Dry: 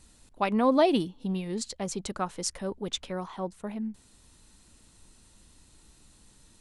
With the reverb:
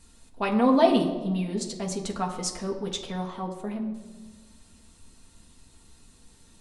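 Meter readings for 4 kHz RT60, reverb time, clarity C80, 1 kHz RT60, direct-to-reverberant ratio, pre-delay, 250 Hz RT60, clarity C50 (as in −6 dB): 0.80 s, 1.4 s, 10.5 dB, 1.1 s, 0.0 dB, 4 ms, 2.1 s, 9.0 dB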